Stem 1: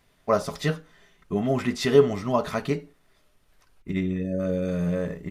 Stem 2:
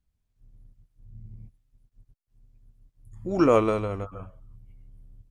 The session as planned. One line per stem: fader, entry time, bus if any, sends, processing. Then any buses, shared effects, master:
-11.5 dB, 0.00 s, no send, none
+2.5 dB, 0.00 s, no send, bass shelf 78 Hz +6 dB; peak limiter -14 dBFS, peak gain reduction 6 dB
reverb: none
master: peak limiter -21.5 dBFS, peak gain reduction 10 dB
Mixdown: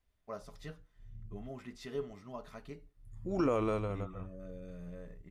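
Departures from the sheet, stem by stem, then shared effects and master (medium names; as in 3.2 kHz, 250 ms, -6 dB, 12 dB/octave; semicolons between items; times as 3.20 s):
stem 1 -11.5 dB -> -21.5 dB; stem 2 +2.5 dB -> -7.5 dB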